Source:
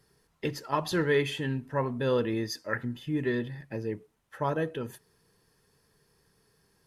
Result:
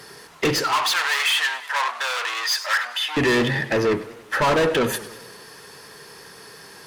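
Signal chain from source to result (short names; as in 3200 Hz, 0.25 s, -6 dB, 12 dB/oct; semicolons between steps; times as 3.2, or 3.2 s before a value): overdrive pedal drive 34 dB, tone 5300 Hz, clips at -13 dBFS; 0.64–3.17 HPF 860 Hz 24 dB/oct; warbling echo 97 ms, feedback 59%, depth 153 cents, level -16 dB; gain +1.5 dB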